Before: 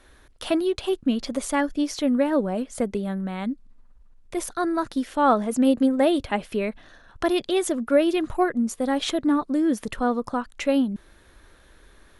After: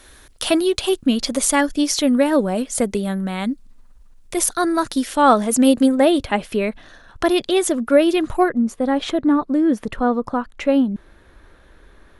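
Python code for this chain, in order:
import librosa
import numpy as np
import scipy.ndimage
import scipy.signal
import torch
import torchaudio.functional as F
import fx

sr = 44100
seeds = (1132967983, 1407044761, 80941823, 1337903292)

y = fx.high_shelf(x, sr, hz=3500.0, db=fx.steps((0.0, 11.0), (5.94, 2.5), (8.48, -11.0)))
y = y * 10.0 ** (5.0 / 20.0)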